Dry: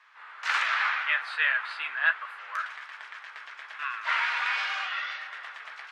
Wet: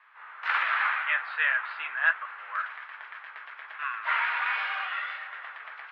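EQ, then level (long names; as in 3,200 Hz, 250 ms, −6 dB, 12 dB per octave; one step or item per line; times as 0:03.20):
high-pass filter 510 Hz 6 dB per octave
high-frequency loss of the air 470 metres
+4.5 dB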